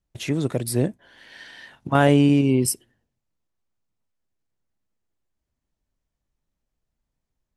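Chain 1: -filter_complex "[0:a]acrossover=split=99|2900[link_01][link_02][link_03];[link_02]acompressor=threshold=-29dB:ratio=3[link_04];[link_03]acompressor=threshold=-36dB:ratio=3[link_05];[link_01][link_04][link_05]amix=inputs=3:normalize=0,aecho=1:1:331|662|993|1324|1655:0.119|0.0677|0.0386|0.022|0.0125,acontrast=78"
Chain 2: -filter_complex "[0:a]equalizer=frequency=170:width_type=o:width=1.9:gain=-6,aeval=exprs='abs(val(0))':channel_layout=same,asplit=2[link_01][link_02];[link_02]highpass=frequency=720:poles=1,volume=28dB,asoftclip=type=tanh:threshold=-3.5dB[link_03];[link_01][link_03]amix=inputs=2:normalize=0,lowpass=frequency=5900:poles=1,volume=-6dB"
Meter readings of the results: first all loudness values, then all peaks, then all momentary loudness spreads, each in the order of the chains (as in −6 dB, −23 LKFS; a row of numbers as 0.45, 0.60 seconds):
−24.0, −16.5 LKFS; −6.5, −3.5 dBFS; 19, 16 LU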